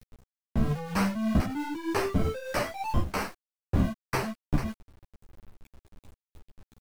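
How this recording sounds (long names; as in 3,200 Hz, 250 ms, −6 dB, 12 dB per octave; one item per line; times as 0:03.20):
a quantiser's noise floor 8 bits, dither none
tremolo triangle 3.2 Hz, depth 50%
a shimmering, thickened sound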